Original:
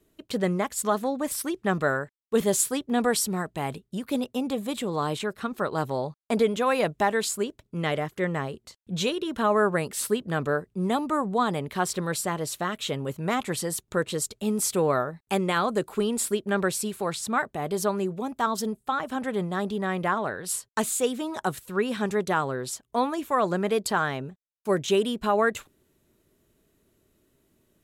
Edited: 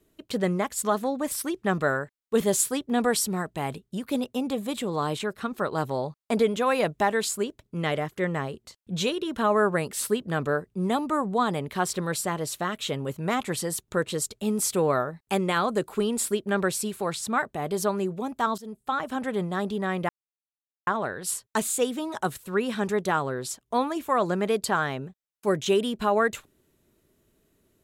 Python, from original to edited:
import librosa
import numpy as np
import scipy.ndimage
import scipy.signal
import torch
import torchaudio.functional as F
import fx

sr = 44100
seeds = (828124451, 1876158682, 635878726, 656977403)

y = fx.edit(x, sr, fx.fade_in_from(start_s=18.58, length_s=0.35, floor_db=-21.0),
    fx.insert_silence(at_s=20.09, length_s=0.78), tone=tone)